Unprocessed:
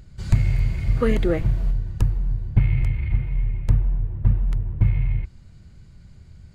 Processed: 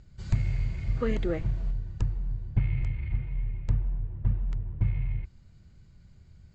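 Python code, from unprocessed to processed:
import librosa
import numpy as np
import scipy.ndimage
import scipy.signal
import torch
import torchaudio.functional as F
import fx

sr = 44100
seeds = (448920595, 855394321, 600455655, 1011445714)

y = scipy.signal.sosfilt(scipy.signal.butter(16, 7900.0, 'lowpass', fs=sr, output='sos'), x)
y = y * 10.0 ** (-8.0 / 20.0)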